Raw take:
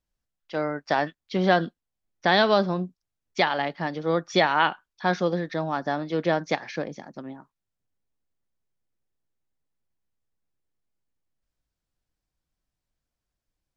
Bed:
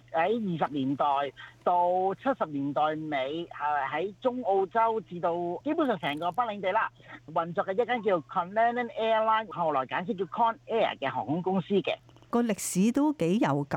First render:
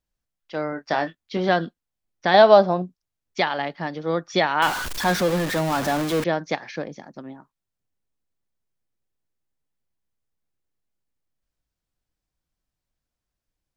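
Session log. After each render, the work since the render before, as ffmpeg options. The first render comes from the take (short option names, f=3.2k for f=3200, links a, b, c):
-filter_complex "[0:a]asettb=1/sr,asplit=3[a][b][c];[a]atrim=end=0.704[d];[b]atrim=start=0.7:end=1.49,asetpts=PTS-STARTPTS,afade=t=in:d=0.004:c=qsin,afade=t=out:st=0.786:d=0.004:c=qsin,asplit=2[e][f];[f]adelay=24,volume=-8.5dB[g];[e][g]amix=inputs=2:normalize=0,atrim=end_sample=34839[h];[c]atrim=start=1.486[i];[d][h]acrossfade=d=0.004:c1=hsin:c2=qsin[j];[j][i]acrossfade=d=0.004:c1=qsin:c2=hsin,asettb=1/sr,asplit=3[k][l][m];[k]atrim=end=2.344[n];[l]atrim=start=2.34:end=2.82,asetpts=PTS-STARTPTS,afade=t=in:d=0.004:c=qsin,afade=t=out:st=0.476:d=0.004:c=qsin,equalizer=f=700:w=1.5:g=11.5[o];[m]atrim=start=2.816[p];[n][o]acrossfade=d=0.004:c1=hsin:c2=qsin[q];[q][p]acrossfade=d=0.004:c1=qsin:c2=hsin,asettb=1/sr,asplit=3[r][s][t];[r]atrim=end=4.624[u];[s]atrim=start=4.62:end=6.24,asetpts=PTS-STARTPTS,afade=t=in:d=0.004:c=qsin,afade=t=out:st=1.616:d=0.004:c=qsin,aeval=exprs='val(0)+0.5*0.075*sgn(val(0))':c=same[v];[t]atrim=start=6.236[w];[u][v]acrossfade=d=0.004:c1=hsin:c2=qsin[x];[x][w]acrossfade=d=0.004:c1=qsin:c2=hsin"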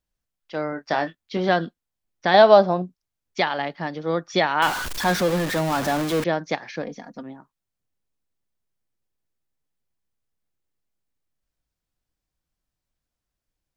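-filter_complex "[0:a]asettb=1/sr,asplit=3[a][b][c];[a]atrim=end=6.824[d];[b]atrim=start=6.82:end=7.23,asetpts=PTS-STARTPTS,afade=t=in:d=0.004:c=qsin,afade=t=out:st=0.406:d=0.004:c=qsin,aecho=1:1:4.2:0.65,atrim=end_sample=18081[e];[c]atrim=start=7.226[f];[d][e]acrossfade=d=0.004:c1=hsin:c2=qsin[g];[g][f]acrossfade=d=0.004:c1=qsin:c2=hsin"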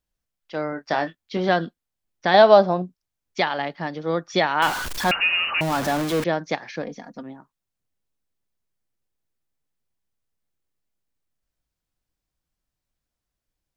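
-filter_complex "[0:a]asettb=1/sr,asplit=3[a][b][c];[a]atrim=end=5.114[d];[b]atrim=start=5.11:end=5.61,asetpts=PTS-STARTPTS,afade=t=in:d=0.004:c=qsin,afade=t=out:st=0.496:d=0.004:c=qsin,lowpass=f=2.6k:t=q:w=0.5098,lowpass=f=2.6k:t=q:w=0.6013,lowpass=f=2.6k:t=q:w=0.9,lowpass=f=2.6k:t=q:w=2.563,afreqshift=-3000[e];[c]atrim=start=5.606[f];[d][e]acrossfade=d=0.004:c1=hsin:c2=qsin[g];[g][f]acrossfade=d=0.004:c1=qsin:c2=hsin"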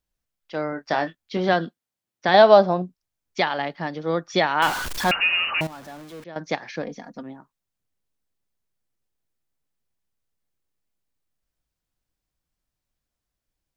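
-filter_complex "[0:a]asettb=1/sr,asplit=3[a][b][c];[a]atrim=end=1.534[d];[b]atrim=start=1.53:end=2.29,asetpts=PTS-STARTPTS,afade=t=in:d=0.004:c=qsin,afade=t=out:st=0.756:d=0.004:c=qsin,highpass=120[e];[c]atrim=start=2.286[f];[d][e]acrossfade=d=0.004:c1=hsin:c2=qsin[g];[g][f]acrossfade=d=0.004:c1=qsin:c2=hsin,asplit=3[h][i][j];[h]atrim=end=5.67,asetpts=PTS-STARTPTS,afade=t=out:st=5.36:d=0.31:c=log:silence=0.141254[k];[i]atrim=start=5.67:end=6.36,asetpts=PTS-STARTPTS,volume=-17dB[l];[j]atrim=start=6.36,asetpts=PTS-STARTPTS,afade=t=in:d=0.31:c=log:silence=0.141254[m];[k][l][m]concat=n=3:v=0:a=1"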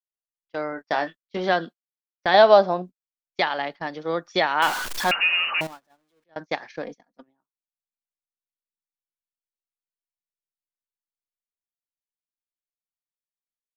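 -af "equalizer=f=67:t=o:w=2.9:g=-14,agate=range=-28dB:threshold=-36dB:ratio=16:detection=peak"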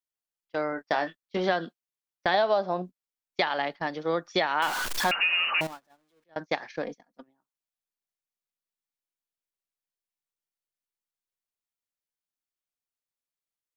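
-af "acompressor=threshold=-21dB:ratio=6"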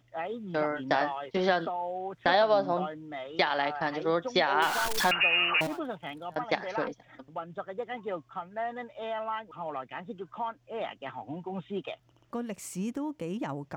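-filter_complex "[1:a]volume=-9dB[a];[0:a][a]amix=inputs=2:normalize=0"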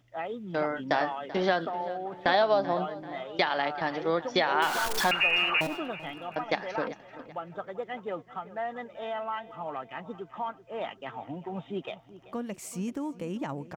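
-filter_complex "[0:a]asplit=2[a][b];[b]adelay=386,lowpass=f=4k:p=1,volume=-16.5dB,asplit=2[c][d];[d]adelay=386,lowpass=f=4k:p=1,volume=0.53,asplit=2[e][f];[f]adelay=386,lowpass=f=4k:p=1,volume=0.53,asplit=2[g][h];[h]adelay=386,lowpass=f=4k:p=1,volume=0.53,asplit=2[i][j];[j]adelay=386,lowpass=f=4k:p=1,volume=0.53[k];[a][c][e][g][i][k]amix=inputs=6:normalize=0"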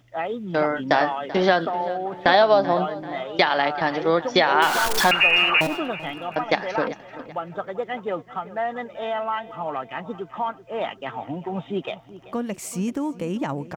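-af "volume=7.5dB"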